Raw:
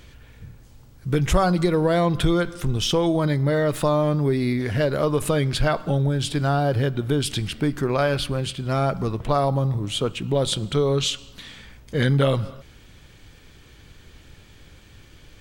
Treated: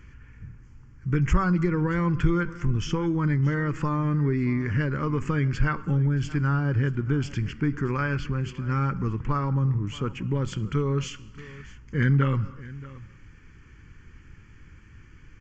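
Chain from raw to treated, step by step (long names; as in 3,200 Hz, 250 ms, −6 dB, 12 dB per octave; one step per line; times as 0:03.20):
high-shelf EQ 5,200 Hz −9.5 dB
phaser with its sweep stopped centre 1,600 Hz, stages 4
on a send: single-tap delay 627 ms −19 dB
on the sum: downsampling to 16,000 Hz
parametric band 480 Hz −3 dB 0.77 octaves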